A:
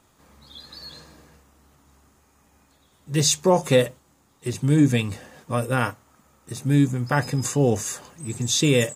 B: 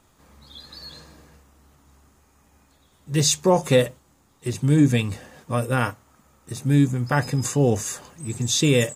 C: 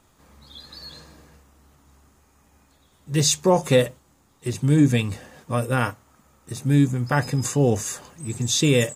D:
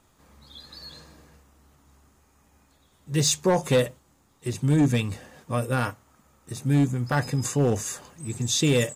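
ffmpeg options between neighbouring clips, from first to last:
-af "lowshelf=f=63:g=7"
-af anull
-af "asoftclip=type=hard:threshold=-12dB,volume=-2.5dB"

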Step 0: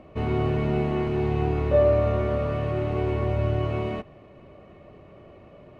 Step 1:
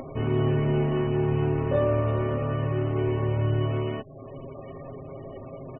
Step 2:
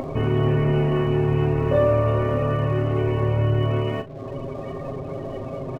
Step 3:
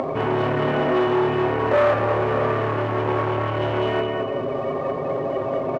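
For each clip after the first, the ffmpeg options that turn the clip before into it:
-af "aecho=1:1:7.5:0.82,acompressor=mode=upward:threshold=-27dB:ratio=2.5,afftfilt=real='re*gte(hypot(re,im),0.0112)':imag='im*gte(hypot(re,im),0.0112)':win_size=1024:overlap=0.75,volume=-2dB"
-filter_complex "[0:a]asplit=2[a][b];[b]acompressor=threshold=-32dB:ratio=6,volume=3dB[c];[a][c]amix=inputs=2:normalize=0,aeval=exprs='sgn(val(0))*max(abs(val(0))-0.00299,0)':c=same,asplit=2[d][e];[e]adelay=39,volume=-10.5dB[f];[d][f]amix=inputs=2:normalize=0,volume=1.5dB"
-af "aecho=1:1:207|414|621|828|1035:0.631|0.271|0.117|0.0502|0.0216,volume=21dB,asoftclip=hard,volume=-21dB,bandpass=f=960:t=q:w=0.55:csg=0,volume=8.5dB"

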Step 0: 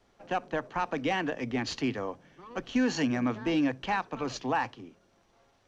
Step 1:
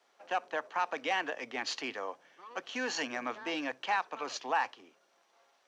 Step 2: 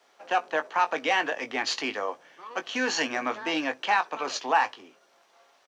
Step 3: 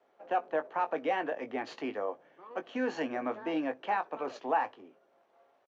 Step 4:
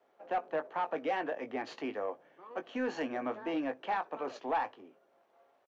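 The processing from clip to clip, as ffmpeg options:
-af "highpass=610"
-filter_complex "[0:a]asplit=2[a][b];[b]adelay=19,volume=-9dB[c];[a][c]amix=inputs=2:normalize=0,volume=7dB"
-af "firequalizer=gain_entry='entry(600,0);entry(980,-7);entry(5000,-22)':delay=0.05:min_phase=1,volume=-1.5dB"
-af "asoftclip=type=tanh:threshold=-22.5dB,volume=-1dB"

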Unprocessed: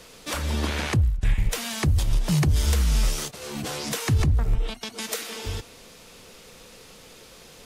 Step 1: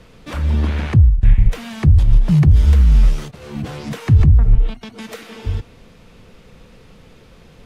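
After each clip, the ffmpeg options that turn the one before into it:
-af "bass=f=250:g=11,treble=f=4k:g=-13"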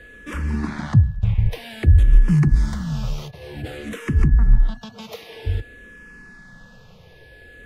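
-filter_complex "[0:a]aeval=exprs='val(0)+0.00794*sin(2*PI*1700*n/s)':c=same,asplit=2[a][b];[b]afreqshift=-0.53[c];[a][c]amix=inputs=2:normalize=1"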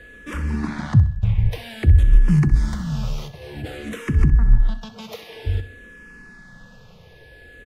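-af "aecho=1:1:64|128|192:0.2|0.0658|0.0217"

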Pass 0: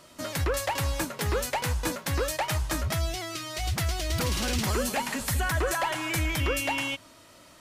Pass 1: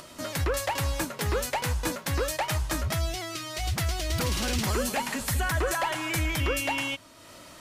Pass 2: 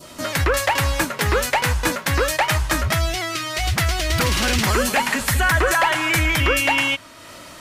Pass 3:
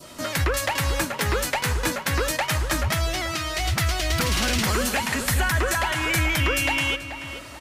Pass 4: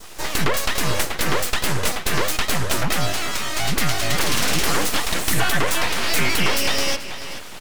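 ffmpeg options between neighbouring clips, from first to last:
-af "acompressor=mode=upward:threshold=-40dB:ratio=2.5"
-af "adynamicequalizer=threshold=0.00631:dfrequency=1800:dqfactor=0.78:tfrequency=1800:tqfactor=0.78:attack=5:release=100:ratio=0.375:range=3:mode=boostabove:tftype=bell,volume=7dB"
-filter_complex "[0:a]acrossover=split=290|3000[a][b][c];[b]acompressor=threshold=-23dB:ratio=2.5[d];[a][d][c]amix=inputs=3:normalize=0,asplit=2[e][f];[f]adelay=433,lowpass=f=2.8k:p=1,volume=-10dB,asplit=2[g][h];[h]adelay=433,lowpass=f=2.8k:p=1,volume=0.38,asplit=2[i][j];[j]adelay=433,lowpass=f=2.8k:p=1,volume=0.38,asplit=2[k][l];[l]adelay=433,lowpass=f=2.8k:p=1,volume=0.38[m];[e][g][i][k][m]amix=inputs=5:normalize=0,volume=-2.5dB"
-af "aeval=exprs='abs(val(0))':c=same,volume=5.5dB"

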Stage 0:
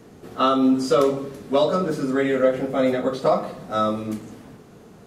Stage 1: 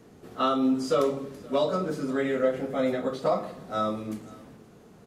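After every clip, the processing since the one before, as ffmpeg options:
-af "aecho=1:1:522:0.0668,volume=-6dB"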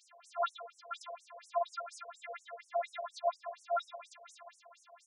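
-af "acompressor=threshold=-37dB:ratio=2.5,afftfilt=real='hypot(re,im)*cos(PI*b)':imag='0':win_size=512:overlap=0.75,afftfilt=real='re*between(b*sr/1024,610*pow(8000/610,0.5+0.5*sin(2*PI*4.2*pts/sr))/1.41,610*pow(8000/610,0.5+0.5*sin(2*PI*4.2*pts/sr))*1.41)':imag='im*between(b*sr/1024,610*pow(8000/610,0.5+0.5*sin(2*PI*4.2*pts/sr))/1.41,610*pow(8000/610,0.5+0.5*sin(2*PI*4.2*pts/sr))*1.41)':win_size=1024:overlap=0.75,volume=11dB"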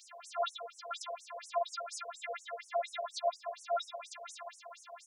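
-filter_complex "[0:a]acrossover=split=500|3000[a][b][c];[b]acompressor=threshold=-53dB:ratio=2.5[d];[a][d][c]amix=inputs=3:normalize=0,volume=8.5dB"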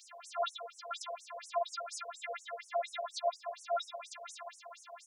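-af "highpass=400"

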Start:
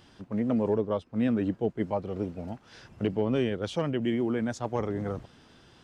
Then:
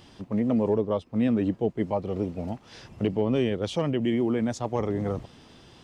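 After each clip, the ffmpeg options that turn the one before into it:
-filter_complex "[0:a]equalizer=f=1.5k:w=3.9:g=-7,asplit=2[a][b];[b]alimiter=level_in=2dB:limit=-24dB:level=0:latency=1:release=183,volume=-2dB,volume=-2dB[c];[a][c]amix=inputs=2:normalize=0"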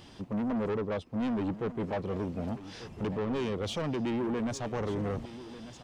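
-af "asoftclip=type=tanh:threshold=-28dB,aecho=1:1:1193:0.188"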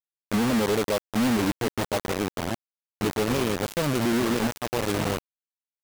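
-af "acrusher=bits=4:mix=0:aa=0.000001,volume=4dB"

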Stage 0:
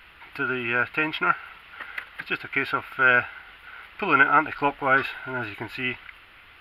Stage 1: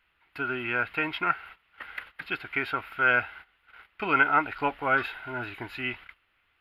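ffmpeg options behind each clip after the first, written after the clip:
-af "agate=range=-16dB:threshold=-41dB:ratio=16:detection=peak,volume=-4dB"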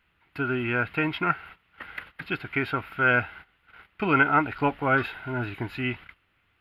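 -af "equalizer=f=140:t=o:w=2.7:g=11.5"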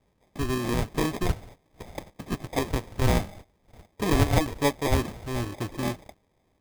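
-af "acrusher=samples=31:mix=1:aa=0.000001"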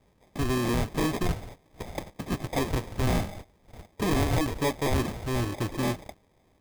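-af "asoftclip=type=tanh:threshold=-26dB,volume=4.5dB"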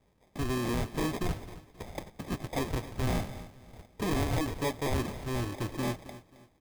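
-af "aecho=1:1:267|534|801:0.158|0.0523|0.0173,volume=-4.5dB"

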